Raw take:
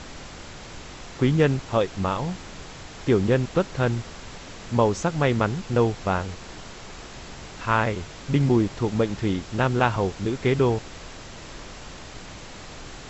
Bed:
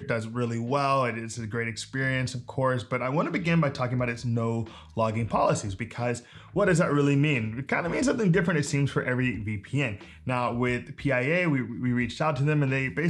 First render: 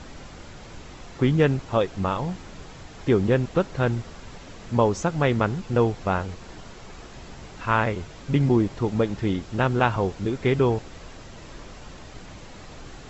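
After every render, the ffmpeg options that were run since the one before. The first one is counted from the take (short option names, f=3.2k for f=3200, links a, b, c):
-af "afftdn=nr=6:nf=-41"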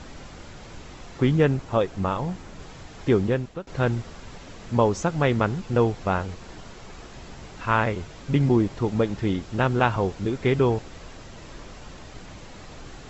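-filter_complex "[0:a]asettb=1/sr,asplit=3[a][b][c];[a]atrim=end=1.384[d];[b]atrim=start=1.38:end=2.6,asetpts=PTS-STARTPTS,afade=t=in:d=0.004:c=qsin,afade=t=out:st=1.216:d=0.004:c=qsin,equalizer=f=3.8k:t=o:w=1.9:g=-3[e];[c]atrim=start=2.596[f];[d][e]acrossfade=d=0.004:c1=hsin:c2=qsin[g];[g][f]acrossfade=d=0.004:c1=qsin:c2=hsin,asplit=2[h][i];[h]atrim=end=3.67,asetpts=PTS-STARTPTS,afade=t=out:st=3.16:d=0.51:silence=0.0841395[j];[i]atrim=start=3.67,asetpts=PTS-STARTPTS,afade=t=in:d=0.004:c=hsin:silence=0.0841395[k];[j][k]concat=n=2:v=0:a=1"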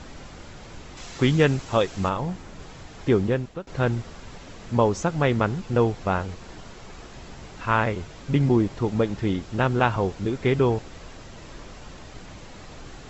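-filter_complex "[0:a]asplit=3[a][b][c];[a]afade=t=out:st=0.96:d=0.02[d];[b]highshelf=f=2.2k:g=11,afade=t=in:st=0.96:d=0.02,afade=t=out:st=2.08:d=0.02[e];[c]afade=t=in:st=2.08:d=0.02[f];[d][e][f]amix=inputs=3:normalize=0"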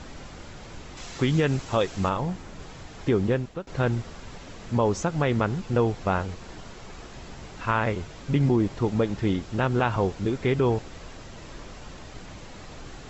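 -af "alimiter=limit=-12dB:level=0:latency=1:release=93"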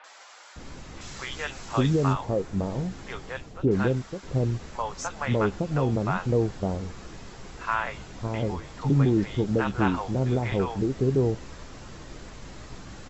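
-filter_complex "[0:a]asplit=2[a][b];[b]adelay=15,volume=-12dB[c];[a][c]amix=inputs=2:normalize=0,acrossover=split=680|2800[d][e][f];[f]adelay=40[g];[d]adelay=560[h];[h][e][g]amix=inputs=3:normalize=0"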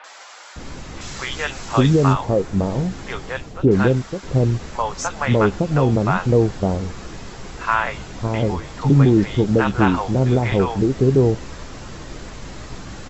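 -af "volume=8dB,alimiter=limit=-3dB:level=0:latency=1"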